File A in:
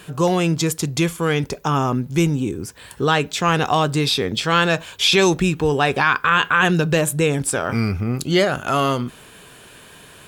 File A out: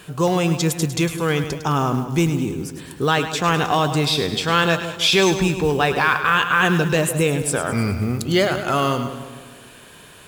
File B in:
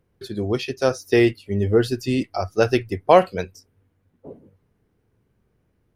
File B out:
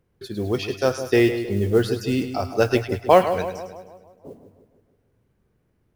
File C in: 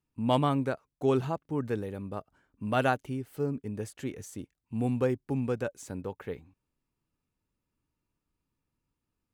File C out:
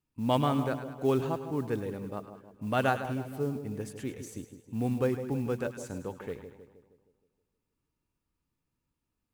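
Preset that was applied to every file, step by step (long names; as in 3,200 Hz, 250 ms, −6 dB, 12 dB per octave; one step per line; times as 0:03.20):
echo with a time of its own for lows and highs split 1,000 Hz, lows 157 ms, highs 104 ms, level −10 dB
noise that follows the level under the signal 29 dB
level −1 dB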